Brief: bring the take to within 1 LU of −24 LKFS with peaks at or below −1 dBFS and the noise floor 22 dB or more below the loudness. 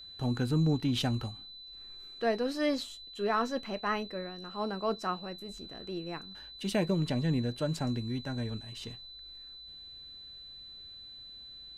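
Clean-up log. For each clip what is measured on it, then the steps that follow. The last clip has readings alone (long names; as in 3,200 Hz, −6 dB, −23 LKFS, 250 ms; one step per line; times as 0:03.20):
interfering tone 4,000 Hz; level of the tone −46 dBFS; integrated loudness −33.0 LKFS; sample peak −18.5 dBFS; target loudness −24.0 LKFS
→ notch filter 4,000 Hz, Q 30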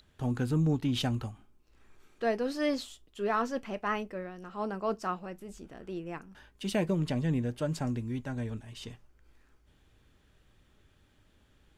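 interfering tone none found; integrated loudness −33.0 LKFS; sample peak −18.5 dBFS; target loudness −24.0 LKFS
→ level +9 dB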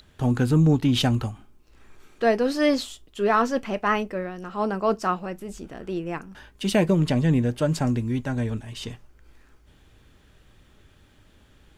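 integrated loudness −24.0 LKFS; sample peak −9.5 dBFS; background noise floor −57 dBFS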